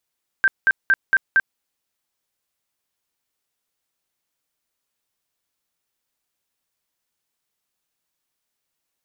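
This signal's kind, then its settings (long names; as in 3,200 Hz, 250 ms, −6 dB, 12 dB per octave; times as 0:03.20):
tone bursts 1,570 Hz, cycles 61, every 0.23 s, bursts 5, −11.5 dBFS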